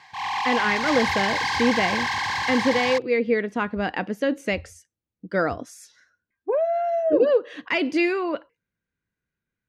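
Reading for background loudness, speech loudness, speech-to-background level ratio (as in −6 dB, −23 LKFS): −25.0 LKFS, −24.0 LKFS, 1.0 dB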